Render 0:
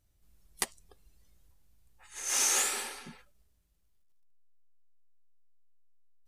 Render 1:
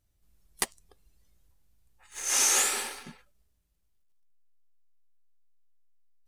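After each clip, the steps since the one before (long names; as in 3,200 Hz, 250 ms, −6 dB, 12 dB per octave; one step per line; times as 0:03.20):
leveller curve on the samples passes 1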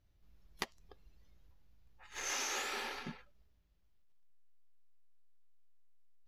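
moving average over 5 samples
downward compressor 6 to 1, threshold −38 dBFS, peak gain reduction 11 dB
level +2 dB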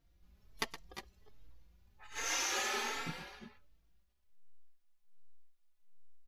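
multi-tap delay 117/347/361 ms −12.5/−15.5/−11.5 dB
barber-pole flanger 3.9 ms +1.3 Hz
level +5.5 dB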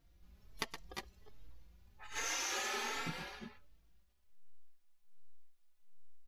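downward compressor 4 to 1, threshold −39 dBFS, peak gain reduction 7.5 dB
level +3 dB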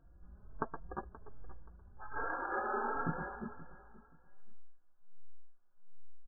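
linear-phase brick-wall low-pass 1,700 Hz
repeating echo 527 ms, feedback 27%, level −18 dB
level +6.5 dB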